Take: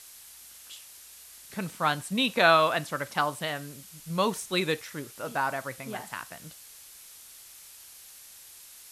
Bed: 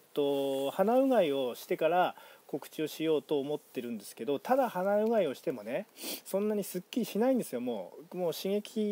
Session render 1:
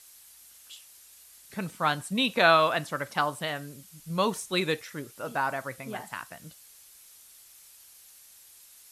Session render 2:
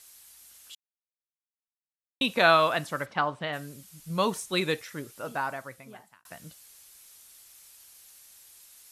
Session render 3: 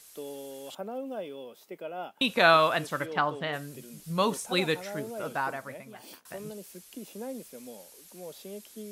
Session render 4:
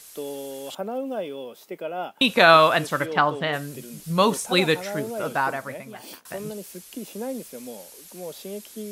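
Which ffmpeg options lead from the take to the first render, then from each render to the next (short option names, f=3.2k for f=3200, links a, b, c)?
-af "afftdn=nr=6:nf=-50"
-filter_complex "[0:a]asplit=3[a][b][c];[a]afade=t=out:st=3.05:d=0.02[d];[b]lowpass=3.1k,afade=t=in:st=3.05:d=0.02,afade=t=out:st=3.52:d=0.02[e];[c]afade=t=in:st=3.52:d=0.02[f];[d][e][f]amix=inputs=3:normalize=0,asplit=4[g][h][i][j];[g]atrim=end=0.75,asetpts=PTS-STARTPTS,afade=t=out:st=0.746:d=0.004:c=hsin[k];[h]atrim=start=0.75:end=2.21,asetpts=PTS-STARTPTS,volume=0[l];[i]atrim=start=2.21:end=6.25,asetpts=PTS-STARTPTS,afade=t=in:d=0.004:c=hsin,afade=t=out:st=2.94:d=1.1[m];[j]atrim=start=6.25,asetpts=PTS-STARTPTS,afade=t=in:d=0.004:c=hsin[n];[k][l][m][n]concat=n=4:v=0:a=1"
-filter_complex "[1:a]volume=-10.5dB[a];[0:a][a]amix=inputs=2:normalize=0"
-af "volume=7dB,alimiter=limit=-3dB:level=0:latency=1"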